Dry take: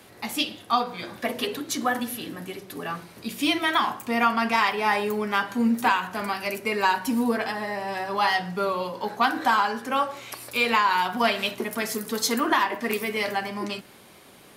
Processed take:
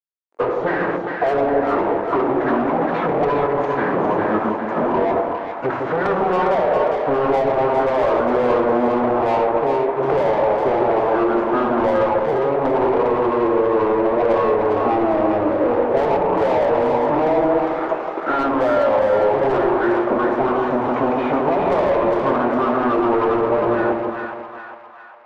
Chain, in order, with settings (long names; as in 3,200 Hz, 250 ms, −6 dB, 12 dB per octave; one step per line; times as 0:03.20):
log-companded quantiser 2 bits
treble cut that deepens with the level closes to 2,900 Hz, closed at −22.5 dBFS
soft clipping −11 dBFS, distortion −9 dB
downward expander −23 dBFS
drawn EQ curve 320 Hz 0 dB, 580 Hz +10 dB, 1,600 Hz +4 dB, 8,700 Hz −27 dB
wrong playback speed 78 rpm record played at 45 rpm
bass and treble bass −9 dB, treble +14 dB
mid-hump overdrive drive 25 dB, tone 1,100 Hz, clips at −9 dBFS
hum removal 226.9 Hz, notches 30
downward compressor 6 to 1, threshold −25 dBFS, peak gain reduction 12 dB
on a send: echo with a time of its own for lows and highs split 810 Hz, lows 162 ms, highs 405 ms, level −4 dB
on the sum: level +7.5 dB